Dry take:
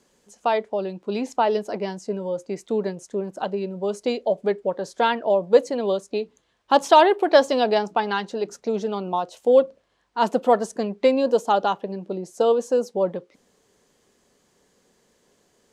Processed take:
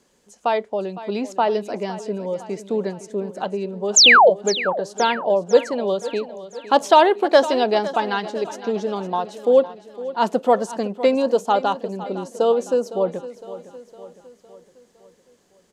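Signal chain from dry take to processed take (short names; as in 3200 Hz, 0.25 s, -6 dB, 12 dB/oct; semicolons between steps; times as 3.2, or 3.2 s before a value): painted sound fall, 3.96–4.3, 410–7600 Hz -11 dBFS; feedback echo 0.509 s, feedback 52%, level -15 dB; gain +1 dB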